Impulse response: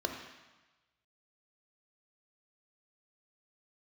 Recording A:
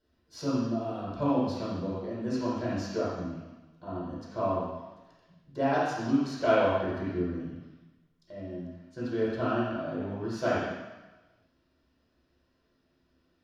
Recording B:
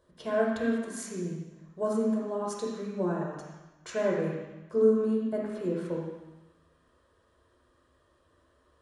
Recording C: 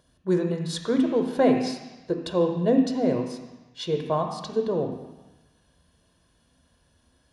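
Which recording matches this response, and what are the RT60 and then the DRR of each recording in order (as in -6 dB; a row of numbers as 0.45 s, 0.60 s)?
C; 1.1 s, 1.1 s, 1.1 s; -9.5 dB, -4.0 dB, 3.5 dB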